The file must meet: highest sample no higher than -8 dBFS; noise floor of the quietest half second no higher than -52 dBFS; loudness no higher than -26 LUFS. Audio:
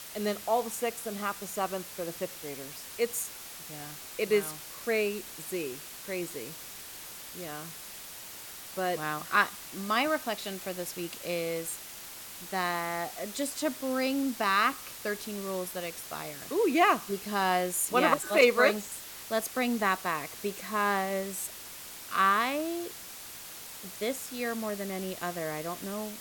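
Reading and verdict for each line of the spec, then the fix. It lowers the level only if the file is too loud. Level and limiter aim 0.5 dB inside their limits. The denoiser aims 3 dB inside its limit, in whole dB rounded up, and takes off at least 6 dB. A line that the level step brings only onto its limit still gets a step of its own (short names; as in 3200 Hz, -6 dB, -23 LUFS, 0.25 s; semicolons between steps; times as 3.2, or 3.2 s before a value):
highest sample -10.0 dBFS: OK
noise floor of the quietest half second -45 dBFS: fail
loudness -31.0 LUFS: OK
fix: denoiser 10 dB, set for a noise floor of -45 dBFS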